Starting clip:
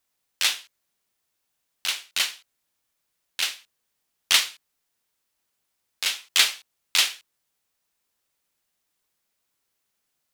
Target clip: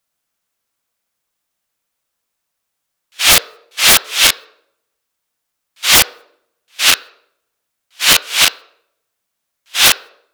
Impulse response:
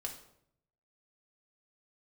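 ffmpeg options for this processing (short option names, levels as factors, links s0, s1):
-filter_complex "[0:a]areverse,agate=range=0.126:threshold=0.00794:ratio=16:detection=peak,aeval=exprs='0.668*sin(PI/2*6.31*val(0)/0.668)':c=same,asplit=2[s0][s1];[s1]highpass=f=390:w=0.5412,highpass=f=390:w=1.3066,equalizer=f=450:t=q:w=4:g=7,equalizer=f=830:t=q:w=4:g=-5,equalizer=f=1400:t=q:w=4:g=4,equalizer=f=2100:t=q:w=4:g=-8,equalizer=f=3100:t=q:w=4:g=-9,lowpass=f=3900:w=0.5412,lowpass=f=3900:w=1.3066[s2];[1:a]atrim=start_sample=2205[s3];[s2][s3]afir=irnorm=-1:irlink=0,volume=0.398[s4];[s0][s4]amix=inputs=2:normalize=0"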